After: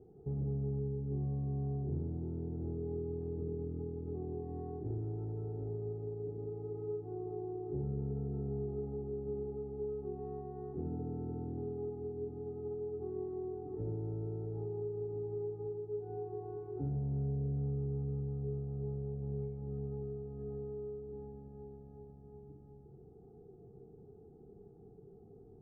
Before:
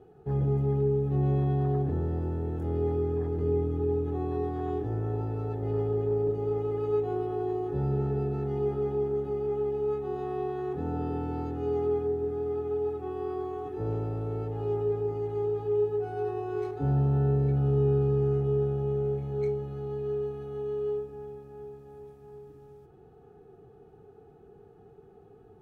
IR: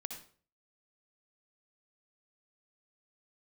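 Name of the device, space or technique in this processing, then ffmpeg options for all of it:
television next door: -filter_complex "[0:a]acompressor=threshold=-34dB:ratio=4,lowpass=410[a];[1:a]atrim=start_sample=2205[b];[a][b]afir=irnorm=-1:irlink=0,volume=2dB"

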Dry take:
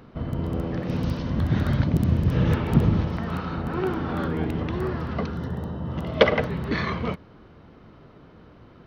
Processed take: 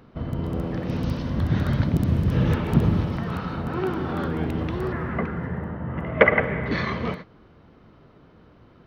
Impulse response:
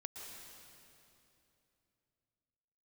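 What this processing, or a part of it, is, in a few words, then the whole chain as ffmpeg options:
keyed gated reverb: -filter_complex "[0:a]asettb=1/sr,asplit=3[a][b][c];[a]atrim=end=4.924[d];[b]atrim=start=4.92:end=6.66,asetpts=PTS-STARTPTS,afade=t=in:d=0.004:c=qsin,afade=t=out:st=1.736:d=0.004:c=qsin,highshelf=f=2.9k:t=q:w=3:g=-13[e];[c]atrim=start=6.656[f];[d][e]acrossfade=d=0.004:c1=hsin:c2=qsin[g];[g][f]acrossfade=d=0.004:c1=qsin:c2=hsin,asplit=3[h][i][j];[1:a]atrim=start_sample=2205[k];[i][k]afir=irnorm=-1:irlink=0[l];[j]apad=whole_len=390906[m];[l][m]sidechaingate=range=-33dB:threshold=-36dB:ratio=16:detection=peak,volume=-2.5dB[n];[h][n]amix=inputs=2:normalize=0,volume=-3dB"

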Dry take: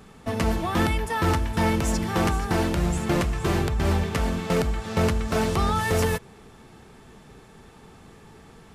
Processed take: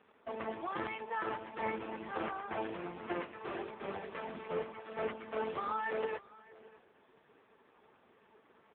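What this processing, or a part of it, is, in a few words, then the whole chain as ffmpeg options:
satellite phone: -filter_complex "[0:a]asettb=1/sr,asplit=3[a][b][c];[a]atrim=end=3.284[d];[b]atrim=start=3.28:end=4.48,asetpts=PTS-STARTPTS,afade=t=in:d=0.004:c=qsin,afade=t=out:st=1.196:d=0.004:c=qsin,bandreject=f=50:t=h:w=6,bandreject=f=100:t=h:w=6,bandreject=f=150:t=h:w=6[e];[c]atrim=start=4.476[f];[d][e]acrossfade=d=0.004:c1=hsin:c2=qsin[g];[g][f]acrossfade=d=0.004:c1=qsin:c2=hsin,highpass=370,lowpass=3.1k,aecho=1:1:607:0.0891,volume=-8dB" -ar 8000 -c:a libopencore_amrnb -b:a 4750

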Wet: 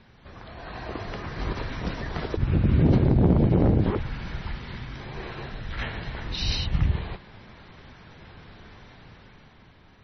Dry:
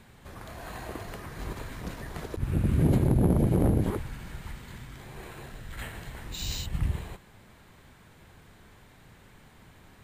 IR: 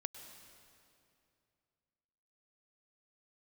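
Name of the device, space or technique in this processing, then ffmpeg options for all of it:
low-bitrate web radio: -af "dynaudnorm=f=110:g=17:m=7.5dB,alimiter=limit=-11dB:level=0:latency=1:release=409" -ar 24000 -c:a libmp3lame -b:a 24k

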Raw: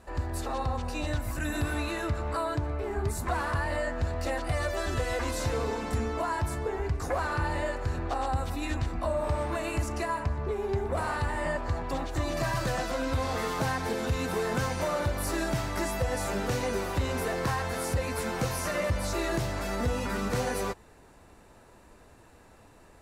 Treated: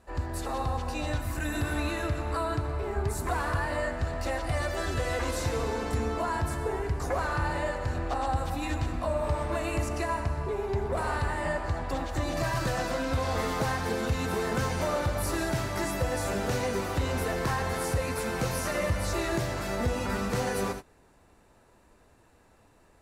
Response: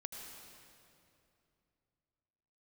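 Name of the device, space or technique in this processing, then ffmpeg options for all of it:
keyed gated reverb: -filter_complex "[0:a]asplit=3[a][b][c];[1:a]atrim=start_sample=2205[d];[b][d]afir=irnorm=-1:irlink=0[e];[c]apad=whole_len=1015075[f];[e][f]sidechaingate=range=-33dB:threshold=-40dB:ratio=16:detection=peak,volume=3.5dB[g];[a][g]amix=inputs=2:normalize=0,volume=-5.5dB"

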